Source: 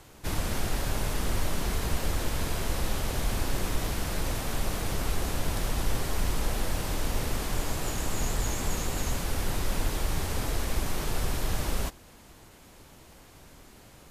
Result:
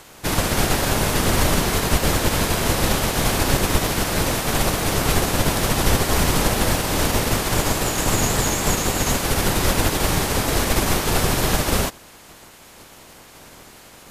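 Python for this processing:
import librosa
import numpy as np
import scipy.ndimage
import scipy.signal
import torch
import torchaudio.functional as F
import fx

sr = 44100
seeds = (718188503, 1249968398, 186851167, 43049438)

y = fx.spec_clip(x, sr, under_db=14)
y = y * librosa.db_to_amplitude(7.0)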